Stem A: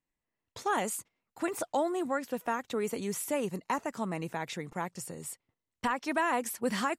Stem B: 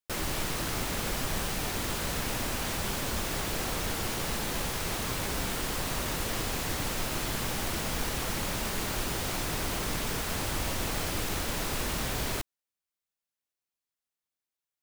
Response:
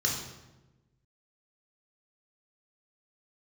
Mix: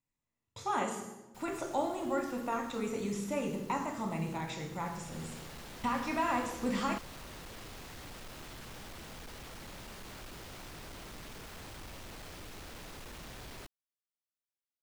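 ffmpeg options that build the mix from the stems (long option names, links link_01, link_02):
-filter_complex "[0:a]volume=-3.5dB,asplit=2[link_01][link_02];[link_02]volume=-8.5dB[link_03];[1:a]volume=31.5dB,asoftclip=hard,volume=-31.5dB,adelay=1250,volume=-12dB,afade=type=in:start_time=4.8:duration=0.47:silence=0.334965[link_04];[2:a]atrim=start_sample=2205[link_05];[link_03][link_05]afir=irnorm=-1:irlink=0[link_06];[link_01][link_04][link_06]amix=inputs=3:normalize=0,acrossover=split=6000[link_07][link_08];[link_08]acompressor=threshold=-54dB:ratio=4:attack=1:release=60[link_09];[link_07][link_09]amix=inputs=2:normalize=0"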